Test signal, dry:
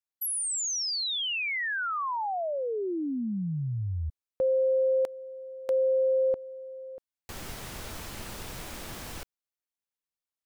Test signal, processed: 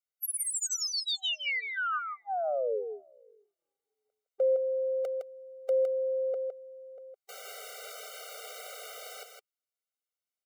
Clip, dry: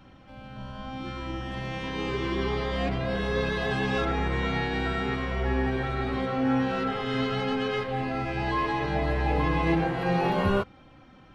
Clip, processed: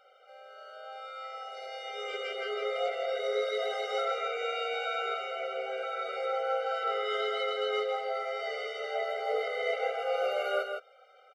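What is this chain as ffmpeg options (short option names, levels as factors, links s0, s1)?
-af "aecho=1:1:161:0.501,aeval=exprs='0.299*(cos(1*acos(clip(val(0)/0.299,-1,1)))-cos(1*PI/2))+0.0168*(cos(4*acos(clip(val(0)/0.299,-1,1)))-cos(4*PI/2))':c=same,afftfilt=real='re*eq(mod(floor(b*sr/1024/390),2),1)':imag='im*eq(mod(floor(b*sr/1024/390),2),1)':win_size=1024:overlap=0.75"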